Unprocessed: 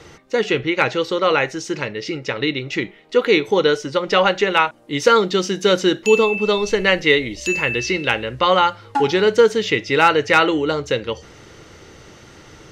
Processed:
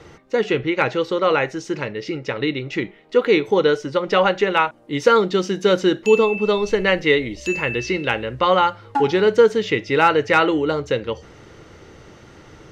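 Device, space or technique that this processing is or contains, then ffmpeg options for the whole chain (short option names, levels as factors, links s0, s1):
behind a face mask: -af "highshelf=f=2600:g=-8"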